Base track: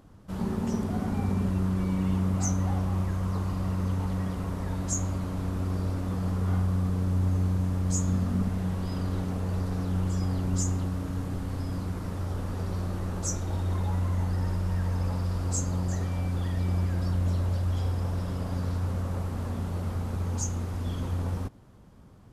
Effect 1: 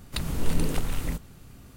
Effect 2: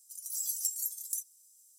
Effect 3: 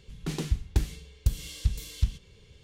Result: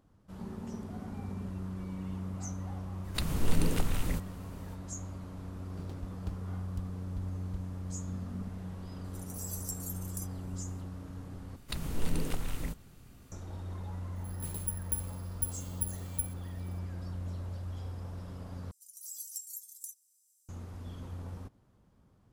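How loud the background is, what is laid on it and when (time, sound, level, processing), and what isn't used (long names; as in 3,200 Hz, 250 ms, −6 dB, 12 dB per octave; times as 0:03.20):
base track −12 dB
0:03.02: mix in 1 −2.5 dB, fades 0.05 s
0:05.51: mix in 3 −16 dB + slack as between gear wheels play −29 dBFS
0:09.04: mix in 2 −7.5 dB
0:11.56: overwrite with 1 −6.5 dB
0:14.16: mix in 3 −16.5 dB + bad sample-rate conversion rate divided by 4×, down filtered, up zero stuff
0:18.71: overwrite with 2 −9 dB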